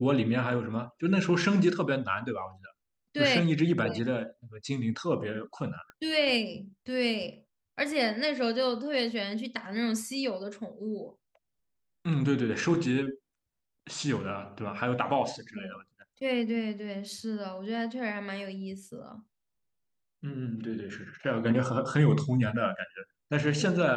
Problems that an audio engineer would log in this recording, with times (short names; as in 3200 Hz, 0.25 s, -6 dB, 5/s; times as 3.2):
5.9 pop -32 dBFS